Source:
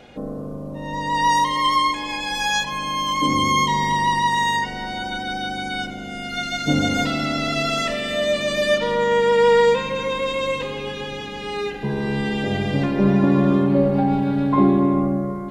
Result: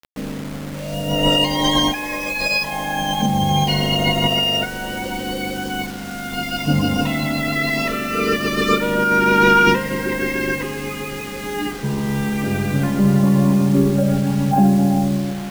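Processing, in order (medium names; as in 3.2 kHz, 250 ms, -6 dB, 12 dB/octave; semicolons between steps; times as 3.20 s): formant shift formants -5 st; bit crusher 6-bit; trim +2 dB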